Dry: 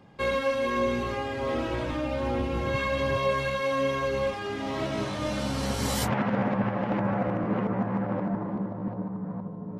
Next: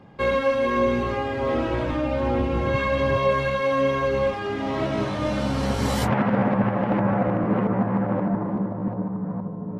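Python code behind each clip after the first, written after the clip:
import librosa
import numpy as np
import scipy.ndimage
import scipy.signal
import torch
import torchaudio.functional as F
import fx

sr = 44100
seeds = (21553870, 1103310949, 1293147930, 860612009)

y = fx.high_shelf(x, sr, hz=3800.0, db=-10.5)
y = y * librosa.db_to_amplitude(5.5)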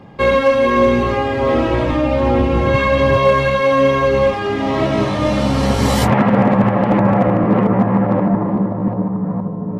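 y = fx.notch(x, sr, hz=1500.0, q=12.0)
y = np.clip(y, -10.0 ** (-13.5 / 20.0), 10.0 ** (-13.5 / 20.0))
y = y * librosa.db_to_amplitude(8.5)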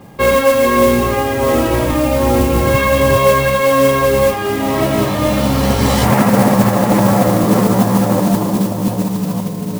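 y = fx.mod_noise(x, sr, seeds[0], snr_db=16)
y = y * librosa.db_to_amplitude(1.5)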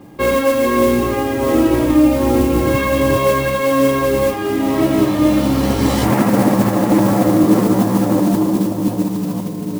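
y = fx.peak_eq(x, sr, hz=310.0, db=12.5, octaves=0.4)
y = y * librosa.db_to_amplitude(-4.5)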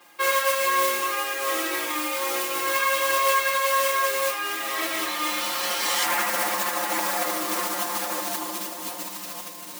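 y = scipy.signal.sosfilt(scipy.signal.butter(2, 1400.0, 'highpass', fs=sr, output='sos'), x)
y = y + 0.85 * np.pad(y, (int(5.7 * sr / 1000.0), 0))[:len(y)]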